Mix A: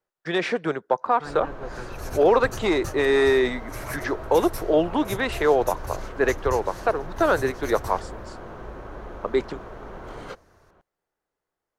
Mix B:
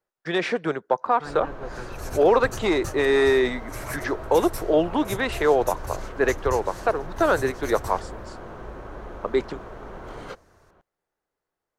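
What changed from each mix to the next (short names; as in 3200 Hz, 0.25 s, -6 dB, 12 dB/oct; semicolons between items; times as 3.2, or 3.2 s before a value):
second sound: add bell 7900 Hz +4.5 dB 0.36 oct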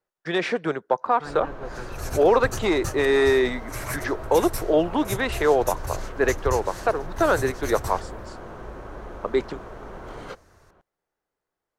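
second sound +3.5 dB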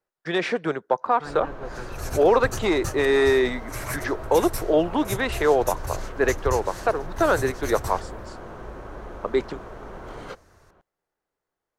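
none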